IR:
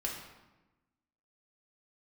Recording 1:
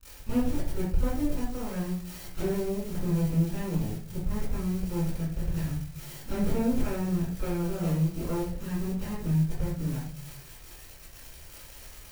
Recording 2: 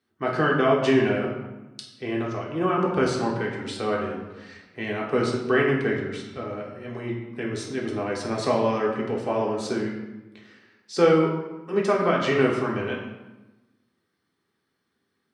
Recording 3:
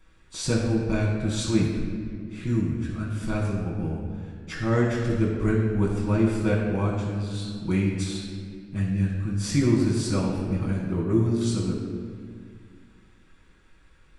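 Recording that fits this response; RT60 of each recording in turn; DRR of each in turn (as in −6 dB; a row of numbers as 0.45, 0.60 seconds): 2; 0.50, 1.1, 2.0 seconds; −14.5, −3.0, −4.5 decibels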